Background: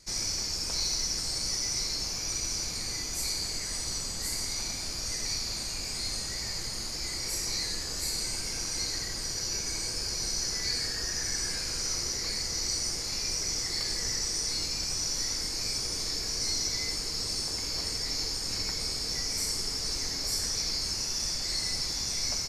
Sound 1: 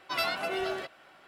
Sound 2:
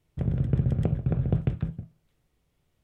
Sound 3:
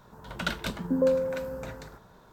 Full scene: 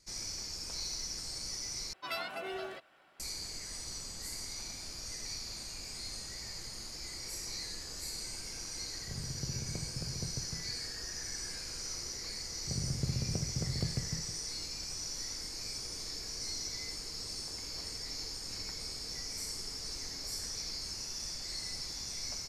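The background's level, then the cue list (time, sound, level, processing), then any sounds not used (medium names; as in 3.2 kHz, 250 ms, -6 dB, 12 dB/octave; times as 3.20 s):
background -9 dB
1.93 s: replace with 1 -8 dB
8.90 s: add 2 -16 dB
12.50 s: add 2 -10.5 dB
not used: 3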